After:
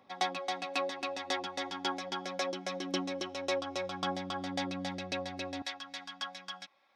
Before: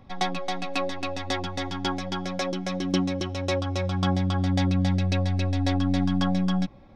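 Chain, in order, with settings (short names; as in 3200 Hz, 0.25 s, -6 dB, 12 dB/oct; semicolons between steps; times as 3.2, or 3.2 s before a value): HPF 370 Hz 12 dB/oct, from 5.62 s 1300 Hz; gain -4.5 dB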